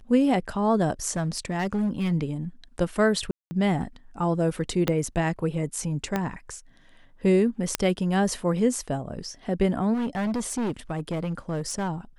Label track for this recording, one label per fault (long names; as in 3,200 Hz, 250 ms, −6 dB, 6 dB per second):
1.110000	2.130000	clipping −21.5 dBFS
3.310000	3.510000	drop-out 200 ms
4.880000	4.880000	click −9 dBFS
6.160000	6.160000	click −12 dBFS
7.750000	7.750000	click −5 dBFS
9.930000	11.900000	clipping −24 dBFS